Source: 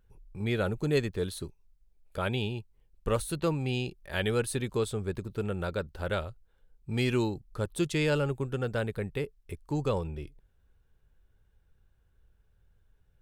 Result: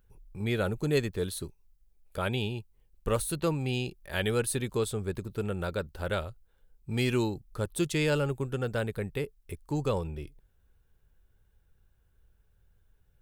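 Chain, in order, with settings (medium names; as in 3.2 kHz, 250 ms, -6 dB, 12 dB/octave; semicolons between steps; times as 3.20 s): treble shelf 10 kHz +9.5 dB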